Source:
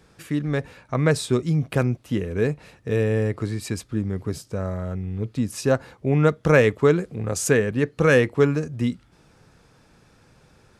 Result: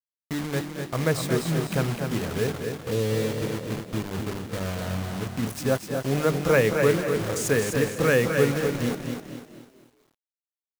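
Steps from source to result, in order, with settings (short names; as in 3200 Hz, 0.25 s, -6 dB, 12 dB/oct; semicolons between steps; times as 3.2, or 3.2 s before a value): notches 50/100/150/200/250/300/350/400 Hz; 2.47–4.45 steep low-pass 1400 Hz 48 dB/oct; bit-crush 5-bit; frequency-shifting echo 0.224 s, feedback 43%, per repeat +38 Hz, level -10.5 dB; lo-fi delay 0.252 s, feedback 35%, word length 9-bit, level -6 dB; gain -4 dB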